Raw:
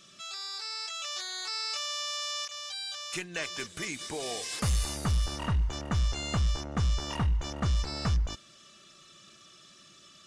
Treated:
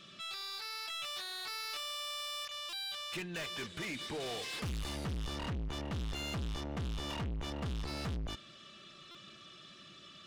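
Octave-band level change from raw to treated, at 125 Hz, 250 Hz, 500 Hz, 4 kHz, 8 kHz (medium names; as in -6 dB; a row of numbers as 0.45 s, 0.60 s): -9.5 dB, -4.5 dB, -3.5 dB, -4.5 dB, -11.0 dB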